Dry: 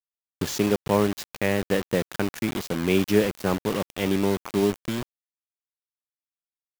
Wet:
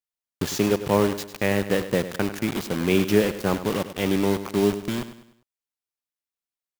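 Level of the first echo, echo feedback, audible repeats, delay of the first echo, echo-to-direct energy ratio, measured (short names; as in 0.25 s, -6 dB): -12.5 dB, 41%, 3, 0.1 s, -11.5 dB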